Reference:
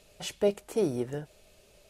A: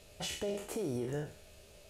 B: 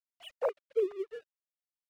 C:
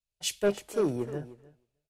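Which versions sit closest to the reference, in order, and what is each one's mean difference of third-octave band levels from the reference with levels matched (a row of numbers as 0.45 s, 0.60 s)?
C, A, B; 6.0 dB, 8.0 dB, 12.0 dB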